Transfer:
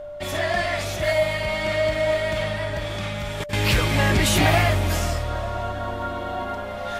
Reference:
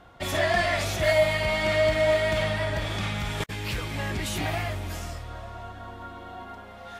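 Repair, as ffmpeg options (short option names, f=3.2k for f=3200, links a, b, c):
-af "bandreject=f=590:w=30,agate=range=-21dB:threshold=-22dB,asetnsamples=n=441:p=0,asendcmd='3.53 volume volume -11dB',volume=0dB"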